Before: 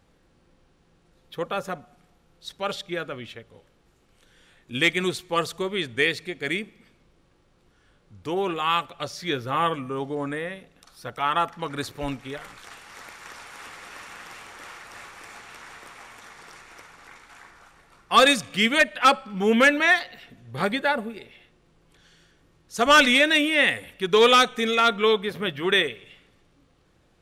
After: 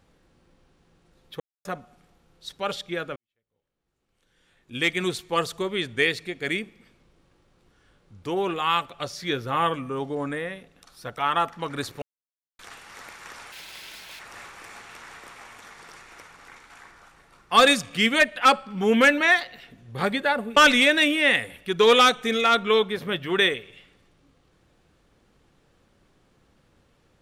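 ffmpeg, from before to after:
-filter_complex "[0:a]asplit=9[a][b][c][d][e][f][g][h][i];[a]atrim=end=1.4,asetpts=PTS-STARTPTS,afade=t=out:st=1.396:d=0.004:c=hsin[j];[b]atrim=start=1.4:end=1.65,asetpts=PTS-STARTPTS,volume=0[k];[c]atrim=start=1.65:end=3.16,asetpts=PTS-STARTPTS,afade=t=in:d=0.004:c=hsin,afade=t=out:st=1.506:d=0.004:c=hsin[l];[d]atrim=start=3.16:end=12.02,asetpts=PTS-STARTPTS,afade=t=in:d=2:c=qua,afade=t=out:st=8.856:d=0.004:c=hsin[m];[e]atrim=start=12.02:end=12.59,asetpts=PTS-STARTPTS,volume=0[n];[f]atrim=start=12.59:end=13.524,asetpts=PTS-STARTPTS,afade=t=in:d=0.004:c=hsin[o];[g]atrim=start=13.52:end=14.79,asetpts=PTS-STARTPTS,asetrate=82908,aresample=44100[p];[h]atrim=start=14.786:end=21.162[q];[i]atrim=start=22.898[r];[j][k][l][m][n][o]concat=n=6:v=0:a=1[s];[s][p]acrossfade=d=0.004:c1=hsin:c2=hsin[t];[t][q]acrossfade=d=0.004:c1=hsin:c2=hsin[u];[u][r]acrossfade=d=0.004:c1=hsin:c2=hsin"

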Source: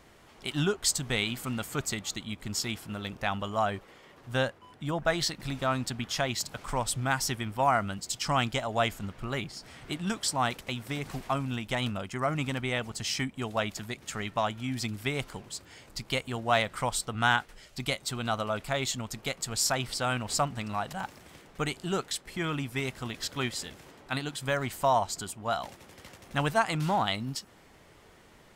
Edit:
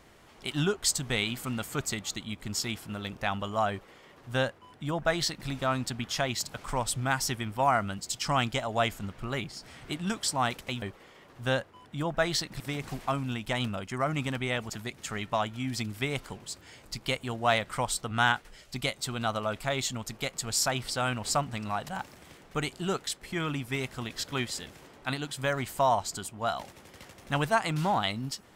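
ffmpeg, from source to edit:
-filter_complex "[0:a]asplit=4[a][b][c][d];[a]atrim=end=10.822[e];[b]atrim=start=3.698:end=5.482[f];[c]atrim=start=10.818:end=12.922[g];[d]atrim=start=13.738[h];[e][f]acrossfade=d=0.004:c1=hsin:c2=hsin[i];[i][g]acrossfade=d=0.004:c1=hsin:c2=hsin[j];[j][h]acrossfade=d=0.004:c1=hsin:c2=hsin"

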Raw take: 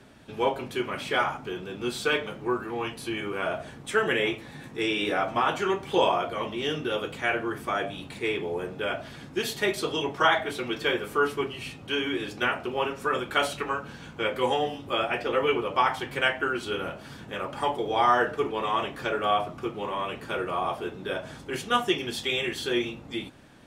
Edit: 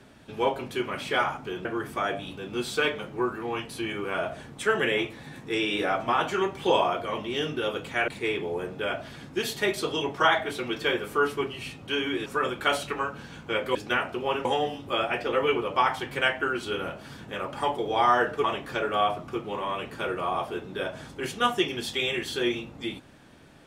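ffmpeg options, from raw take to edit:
-filter_complex "[0:a]asplit=8[a][b][c][d][e][f][g][h];[a]atrim=end=1.652[i];[b]atrim=start=7.358:end=8.082[j];[c]atrim=start=1.648:end=7.362[k];[d]atrim=start=8.078:end=12.262[l];[e]atrim=start=12.958:end=14.452[m];[f]atrim=start=12.258:end=12.962[n];[g]atrim=start=14.448:end=18.442[o];[h]atrim=start=18.738[p];[i][j]acrossfade=d=0.004:c1=hsin:c2=hsin[q];[q][k]acrossfade=d=0.004:c1=hsin:c2=hsin[r];[r][l]acrossfade=d=0.004:c1=hsin:c2=hsin[s];[s][m]acrossfade=d=0.004:c1=hsin:c2=hsin[t];[t][n]acrossfade=d=0.004:c1=hsin:c2=hsin[u];[u][o]acrossfade=d=0.004:c1=hsin:c2=hsin[v];[v][p]acrossfade=d=0.004:c1=hsin:c2=hsin"

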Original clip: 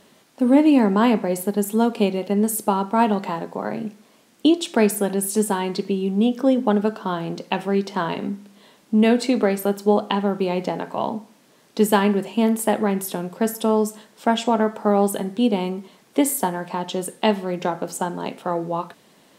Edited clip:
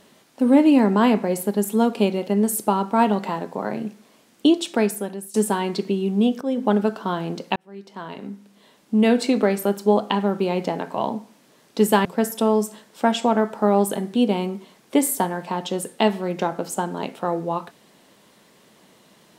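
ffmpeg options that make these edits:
-filter_complex "[0:a]asplit=5[a][b][c][d][e];[a]atrim=end=5.34,asetpts=PTS-STARTPTS,afade=t=out:st=4.57:d=0.77:silence=0.133352[f];[b]atrim=start=5.34:end=6.41,asetpts=PTS-STARTPTS,afade=t=in:d=0.004:c=hsin:silence=0.133352,afade=t=out:st=1.066:d=0.004:c=hsin:silence=0.237137[g];[c]atrim=start=6.41:end=7.56,asetpts=PTS-STARTPTS,afade=t=in:d=0.3:silence=0.237137,afade=t=out:st=1.146:d=0.004:c=hsin[h];[d]atrim=start=7.56:end=12.052,asetpts=PTS-STARTPTS,afade=t=in:d=1.64[i];[e]atrim=start=13.278[j];[f][g][h][i]concat=n=4:v=0:a=1[k];[k][j]acrossfade=d=0.004:c1=hsin:c2=hsin"

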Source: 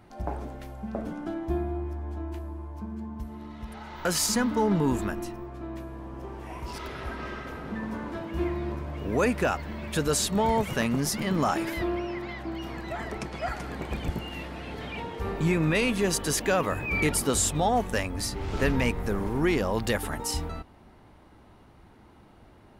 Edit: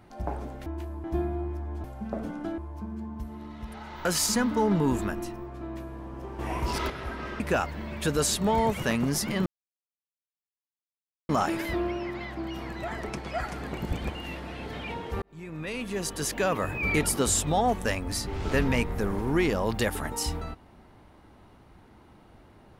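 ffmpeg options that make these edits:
-filter_complex "[0:a]asplit=12[a][b][c][d][e][f][g][h][i][j][k][l];[a]atrim=end=0.662[m];[b]atrim=start=2.198:end=2.582[n];[c]atrim=start=1.398:end=2.202[o];[d]atrim=start=0.658:end=1.402[p];[e]atrim=start=2.578:end=6.392[q];[f]atrim=start=6.388:end=6.902,asetpts=PTS-STARTPTS,volume=7.5dB[r];[g]atrim=start=6.898:end=7.402[s];[h]atrim=start=9.308:end=11.37,asetpts=PTS-STARTPTS,afade=t=out:st=2.058:d=0.004:c=hsin,apad=pad_dur=1.83[t];[i]atrim=start=11.37:end=13.862,asetpts=PTS-STARTPTS,afade=t=in:d=0.004:c=hsin[u];[j]atrim=start=13.858:end=14.232,asetpts=PTS-STARTPTS,areverse[v];[k]atrim=start=14.228:end=15.3,asetpts=PTS-STARTPTS,afade=t=out:st=1.068:d=0.004:c=hsin[w];[l]atrim=start=15.3,asetpts=PTS-STARTPTS,afade=t=in:d=1.52[x];[m][n]acrossfade=d=0.004:c1=hsin:c2=hsin[y];[y][o]acrossfade=d=0.004:c1=hsin:c2=hsin[z];[z][p]acrossfade=d=0.004:c1=hsin:c2=hsin[aa];[aa][q]acrossfade=d=0.004:c1=hsin:c2=hsin[ab];[ab][r]acrossfade=d=0.004:c1=hsin:c2=hsin[ac];[ac][s]acrossfade=d=0.004:c1=hsin:c2=hsin[ad];[t][u]concat=n=2:v=0:a=1[ae];[ad][ae]acrossfade=d=0.004:c1=hsin:c2=hsin[af];[af][v]acrossfade=d=0.004:c1=hsin:c2=hsin[ag];[w][x]concat=n=2:v=0:a=1[ah];[ag][ah]acrossfade=d=0.004:c1=hsin:c2=hsin"

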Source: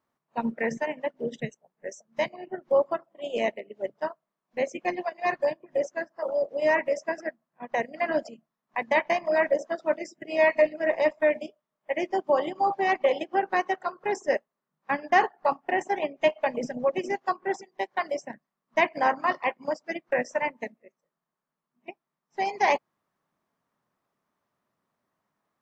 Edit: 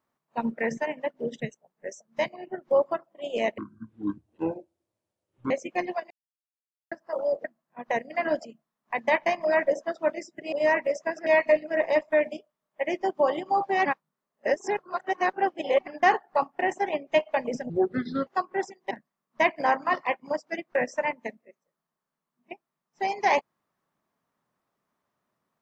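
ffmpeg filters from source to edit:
-filter_complex "[0:a]asplit=13[a][b][c][d][e][f][g][h][i][j][k][l][m];[a]atrim=end=3.584[n];[b]atrim=start=3.58:end=4.6,asetpts=PTS-STARTPTS,asetrate=23373,aresample=44100[o];[c]atrim=start=4.596:end=5.2,asetpts=PTS-STARTPTS,afade=t=out:st=0.6:d=0.004:c=hsin[p];[d]atrim=start=5.2:end=6.01,asetpts=PTS-STARTPTS,volume=0[q];[e]atrim=start=6.01:end=6.542,asetpts=PTS-STARTPTS,afade=t=in:d=0.004:c=hsin[r];[f]atrim=start=7.278:end=10.362[s];[g]atrim=start=6.538:end=7.282[t];[h]atrim=start=10.358:end=12.952[u];[i]atrim=start=12.948:end=14.972,asetpts=PTS-STARTPTS,areverse[v];[j]atrim=start=14.968:end=16.794[w];[k]atrim=start=16.79:end=17.18,asetpts=PTS-STARTPTS,asetrate=29988,aresample=44100[x];[l]atrim=start=17.176:end=17.822[y];[m]atrim=start=18.278[z];[n][o]acrossfade=d=0.004:c1=hsin:c2=hsin[aa];[p][q][r]concat=n=3:v=0:a=1[ab];[aa][ab]acrossfade=d=0.004:c1=hsin:c2=hsin[ac];[ac][s]acrossfade=d=0.004:c1=hsin:c2=hsin[ad];[ad][t]acrossfade=d=0.004:c1=hsin:c2=hsin[ae];[ae][u]acrossfade=d=0.004:c1=hsin:c2=hsin[af];[af][v]acrossfade=d=0.004:c1=hsin:c2=hsin[ag];[ag][w]acrossfade=d=0.004:c1=hsin:c2=hsin[ah];[ah][x]acrossfade=d=0.004:c1=hsin:c2=hsin[ai];[ai][y]acrossfade=d=0.004:c1=hsin:c2=hsin[aj];[aj][z]acrossfade=d=0.004:c1=hsin:c2=hsin"

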